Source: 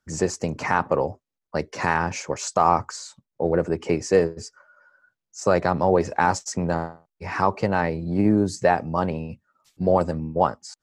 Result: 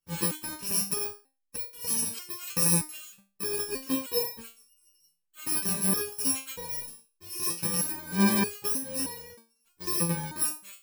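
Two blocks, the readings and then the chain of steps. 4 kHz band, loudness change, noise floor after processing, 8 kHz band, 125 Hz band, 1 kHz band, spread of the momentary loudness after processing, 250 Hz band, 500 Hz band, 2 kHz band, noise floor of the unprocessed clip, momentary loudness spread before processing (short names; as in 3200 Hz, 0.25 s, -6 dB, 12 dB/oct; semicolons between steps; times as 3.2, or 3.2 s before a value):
+4.0 dB, -4.5 dB, -77 dBFS, +7.0 dB, -8.5 dB, -17.5 dB, 13 LU, -7.0 dB, -15.5 dB, -10.0 dB, -85 dBFS, 12 LU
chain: FFT order left unsorted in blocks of 64 samples; vibrato 6.4 Hz 14 cents; stepped resonator 3.2 Hz 170–480 Hz; gain +7 dB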